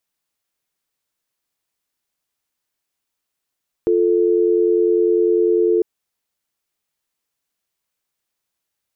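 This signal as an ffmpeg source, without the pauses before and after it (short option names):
-f lavfi -i "aevalsrc='0.168*(sin(2*PI*350*t)+sin(2*PI*440*t))':d=1.95:s=44100"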